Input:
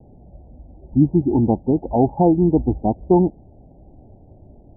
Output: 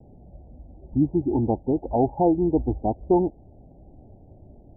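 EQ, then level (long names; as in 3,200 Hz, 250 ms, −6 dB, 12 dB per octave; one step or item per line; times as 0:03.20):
low-pass filter 1,000 Hz 24 dB per octave
dynamic equaliser 180 Hz, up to −8 dB, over −31 dBFS, Q 1.4
−2.5 dB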